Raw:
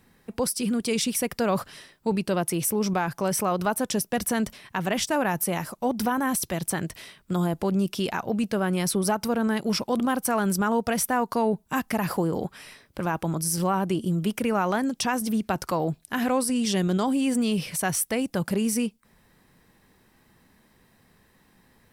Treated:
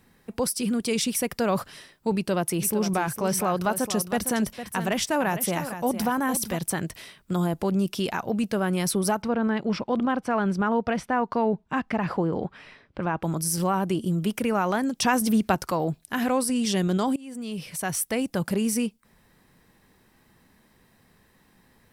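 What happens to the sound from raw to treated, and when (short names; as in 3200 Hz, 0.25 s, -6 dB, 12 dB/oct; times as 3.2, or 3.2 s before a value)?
2.13–6.57 echo 0.456 s -10.5 dB
9.22–13.23 LPF 3000 Hz
15.02–15.55 gain +4 dB
17.16–18.17 fade in, from -24 dB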